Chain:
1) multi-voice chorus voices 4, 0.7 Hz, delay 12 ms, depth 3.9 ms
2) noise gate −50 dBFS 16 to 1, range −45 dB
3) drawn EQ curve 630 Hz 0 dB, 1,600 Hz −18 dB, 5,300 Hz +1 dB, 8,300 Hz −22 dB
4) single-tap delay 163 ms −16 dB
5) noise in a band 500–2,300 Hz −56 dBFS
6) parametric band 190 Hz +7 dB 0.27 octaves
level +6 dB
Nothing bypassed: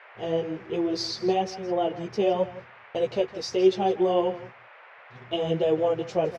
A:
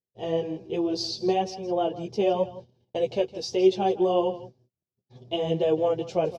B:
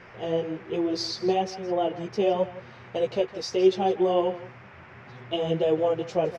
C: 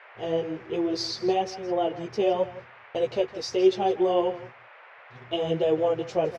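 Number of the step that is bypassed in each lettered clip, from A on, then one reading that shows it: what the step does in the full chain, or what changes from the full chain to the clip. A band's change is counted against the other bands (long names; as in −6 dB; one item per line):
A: 5, 2 kHz band −3.5 dB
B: 2, change in momentary loudness spread +3 LU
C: 6, 125 Hz band −2.5 dB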